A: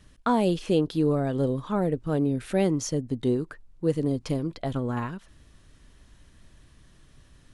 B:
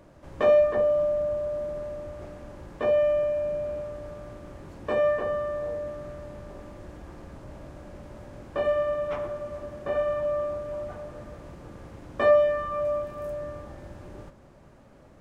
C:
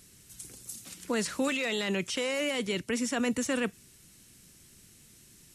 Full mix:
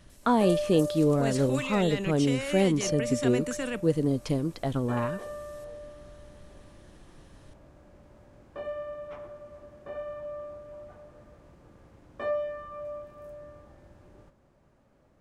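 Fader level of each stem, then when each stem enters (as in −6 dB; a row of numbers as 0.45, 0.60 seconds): 0.0, −11.0, −3.5 decibels; 0.00, 0.00, 0.10 seconds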